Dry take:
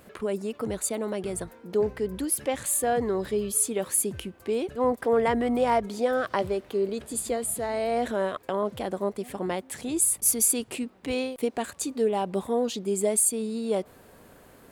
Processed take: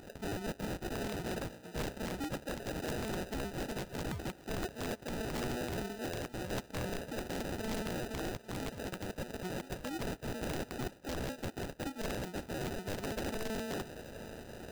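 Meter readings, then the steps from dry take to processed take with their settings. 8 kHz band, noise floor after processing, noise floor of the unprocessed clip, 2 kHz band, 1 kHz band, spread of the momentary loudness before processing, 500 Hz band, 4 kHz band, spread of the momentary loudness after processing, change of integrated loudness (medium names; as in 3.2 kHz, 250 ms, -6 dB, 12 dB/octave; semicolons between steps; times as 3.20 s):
-21.5 dB, -55 dBFS, -54 dBFS, -5.0 dB, -12.5 dB, 9 LU, -14.0 dB, -4.5 dB, 4 LU, -13.0 dB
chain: coarse spectral quantiser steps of 30 dB; reverse; compression 10:1, threshold -39 dBFS, peak gain reduction 20.5 dB; reverse; sample-rate reducer 1.1 kHz, jitter 0%; on a send: thinning echo 801 ms, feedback 31%, high-pass 200 Hz, level -18.5 dB; on the sum: integer overflow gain 37 dB; trim +5.5 dB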